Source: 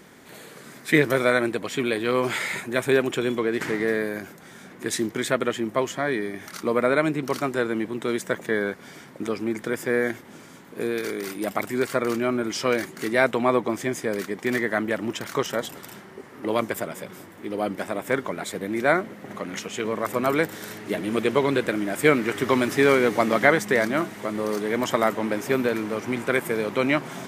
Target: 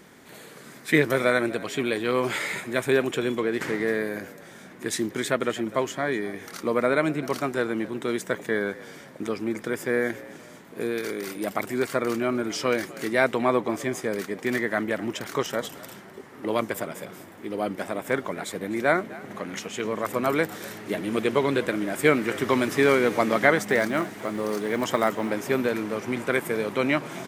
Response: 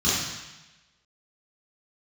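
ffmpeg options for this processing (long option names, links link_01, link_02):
-filter_complex "[0:a]asettb=1/sr,asplit=3[link_01][link_02][link_03];[link_01]atrim=end=23.584[link_04];[link_02]atrim=start=23.58:end=25.3,asetpts=PTS-STARTPTS,afade=type=in:duration=0.004:curve=qsin,afade=type=out:start_time=1.716:duration=0.004:curve=qsin,acrusher=bits=8:mode=log:mix=0:aa=0.000001[link_05];[link_03]atrim=start=25.296[link_06];[link_04][link_05]acrossfade=duration=0.004:curve1=hsin:curve2=qsin[link_07];[link_07][link_06]acrossfade=duration=0.004:curve1=qsin:curve2=hsin,asplit=4[link_08][link_09][link_10][link_11];[link_09]adelay=252,afreqshift=60,volume=-19.5dB[link_12];[link_10]adelay=504,afreqshift=120,volume=-27.7dB[link_13];[link_11]adelay=756,afreqshift=180,volume=-35.9dB[link_14];[link_08][link_12][link_13][link_14]amix=inputs=4:normalize=0,volume=-1.5dB"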